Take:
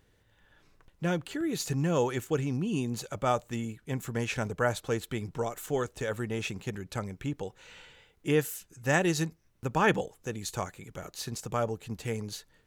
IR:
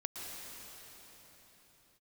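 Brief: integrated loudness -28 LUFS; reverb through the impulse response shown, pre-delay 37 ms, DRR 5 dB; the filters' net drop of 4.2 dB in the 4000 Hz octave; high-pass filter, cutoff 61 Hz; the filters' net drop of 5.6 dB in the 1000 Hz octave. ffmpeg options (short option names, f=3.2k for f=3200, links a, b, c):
-filter_complex "[0:a]highpass=61,equalizer=f=1k:t=o:g=-7.5,equalizer=f=4k:t=o:g=-5,asplit=2[a][b];[1:a]atrim=start_sample=2205,adelay=37[c];[b][c]afir=irnorm=-1:irlink=0,volume=-6dB[d];[a][d]amix=inputs=2:normalize=0,volume=4.5dB"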